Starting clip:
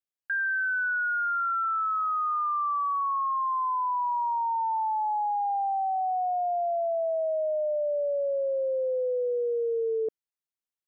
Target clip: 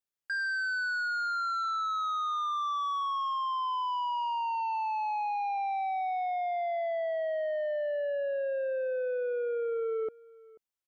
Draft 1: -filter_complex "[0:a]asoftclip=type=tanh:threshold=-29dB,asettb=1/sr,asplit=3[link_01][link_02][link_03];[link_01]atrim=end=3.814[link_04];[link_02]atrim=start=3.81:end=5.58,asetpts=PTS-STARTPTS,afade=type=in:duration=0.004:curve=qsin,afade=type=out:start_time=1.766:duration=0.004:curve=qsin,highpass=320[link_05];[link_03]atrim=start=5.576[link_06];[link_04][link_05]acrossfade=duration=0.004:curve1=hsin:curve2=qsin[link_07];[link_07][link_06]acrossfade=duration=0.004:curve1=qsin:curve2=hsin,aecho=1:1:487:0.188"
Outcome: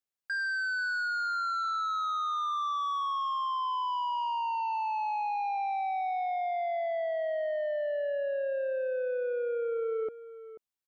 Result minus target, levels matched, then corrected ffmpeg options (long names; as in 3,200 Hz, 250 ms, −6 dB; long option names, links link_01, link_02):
echo-to-direct +8 dB
-filter_complex "[0:a]asoftclip=type=tanh:threshold=-29dB,asettb=1/sr,asplit=3[link_01][link_02][link_03];[link_01]atrim=end=3.814[link_04];[link_02]atrim=start=3.81:end=5.58,asetpts=PTS-STARTPTS,afade=type=in:duration=0.004:curve=qsin,afade=type=out:start_time=1.766:duration=0.004:curve=qsin,highpass=320[link_05];[link_03]atrim=start=5.576[link_06];[link_04][link_05]acrossfade=duration=0.004:curve1=hsin:curve2=qsin[link_07];[link_07][link_06]acrossfade=duration=0.004:curve1=qsin:curve2=hsin,aecho=1:1:487:0.075"